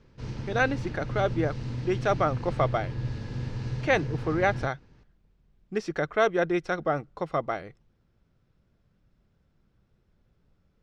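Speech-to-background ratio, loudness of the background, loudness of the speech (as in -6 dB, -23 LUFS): 6.0 dB, -34.5 LUFS, -28.5 LUFS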